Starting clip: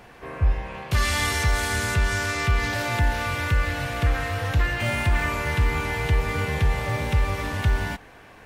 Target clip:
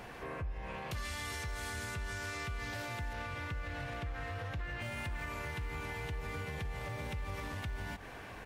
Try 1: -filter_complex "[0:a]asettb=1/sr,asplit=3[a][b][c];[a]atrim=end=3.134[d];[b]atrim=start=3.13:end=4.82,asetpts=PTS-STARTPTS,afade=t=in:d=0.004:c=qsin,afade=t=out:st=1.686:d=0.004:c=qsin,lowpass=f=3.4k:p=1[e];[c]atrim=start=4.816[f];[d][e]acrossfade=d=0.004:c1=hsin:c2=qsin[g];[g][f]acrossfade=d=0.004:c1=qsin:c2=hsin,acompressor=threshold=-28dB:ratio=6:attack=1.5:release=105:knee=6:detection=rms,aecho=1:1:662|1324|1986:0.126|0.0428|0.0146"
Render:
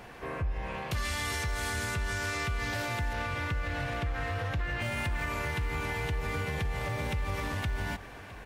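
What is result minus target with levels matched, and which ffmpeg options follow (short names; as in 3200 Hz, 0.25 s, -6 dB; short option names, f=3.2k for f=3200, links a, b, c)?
compressor: peak gain reduction -7.5 dB
-filter_complex "[0:a]asettb=1/sr,asplit=3[a][b][c];[a]atrim=end=3.134[d];[b]atrim=start=3.13:end=4.82,asetpts=PTS-STARTPTS,afade=t=in:d=0.004:c=qsin,afade=t=out:st=1.686:d=0.004:c=qsin,lowpass=f=3.4k:p=1[e];[c]atrim=start=4.816[f];[d][e]acrossfade=d=0.004:c1=hsin:c2=qsin[g];[g][f]acrossfade=d=0.004:c1=qsin:c2=hsin,acompressor=threshold=-37dB:ratio=6:attack=1.5:release=105:knee=6:detection=rms,aecho=1:1:662|1324|1986:0.126|0.0428|0.0146"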